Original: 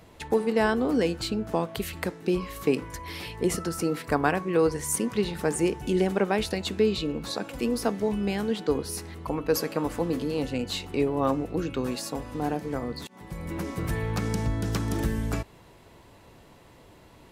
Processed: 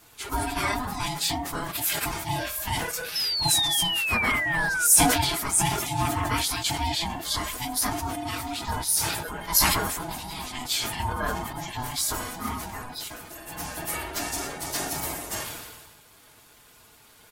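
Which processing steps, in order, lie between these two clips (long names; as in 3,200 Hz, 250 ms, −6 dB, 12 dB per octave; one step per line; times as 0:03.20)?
random phases in long frames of 50 ms
RIAA equalisation recording
comb filter 5.3 ms
ring modulation 500 Hz
sound drawn into the spectrogram fall, 0:03.15–0:04.87, 1,400–5,300 Hz −27 dBFS
level that may fall only so fast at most 38 dB per second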